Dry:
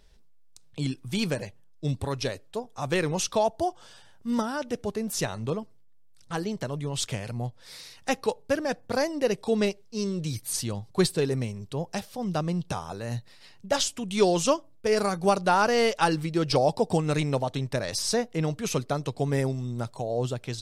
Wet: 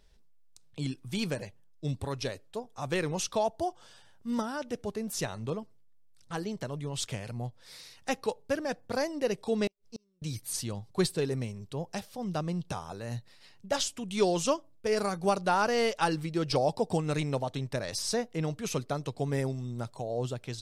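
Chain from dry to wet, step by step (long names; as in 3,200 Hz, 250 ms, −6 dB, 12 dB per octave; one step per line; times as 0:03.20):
0:09.67–0:10.22: gate with flip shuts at −23 dBFS, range −40 dB
level −4.5 dB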